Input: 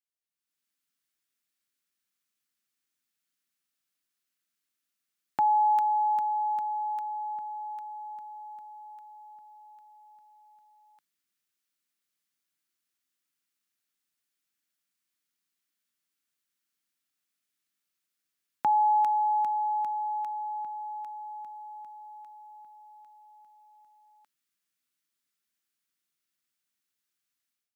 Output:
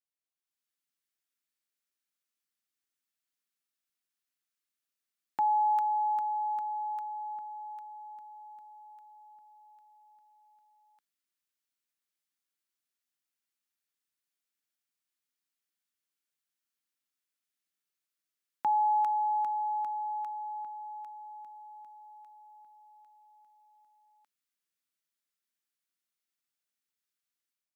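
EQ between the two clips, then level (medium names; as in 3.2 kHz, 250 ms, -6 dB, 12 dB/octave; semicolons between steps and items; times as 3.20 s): dynamic bell 1.2 kHz, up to +6 dB, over -42 dBFS, Q 1.8; bass shelf 120 Hz -9 dB; -5.5 dB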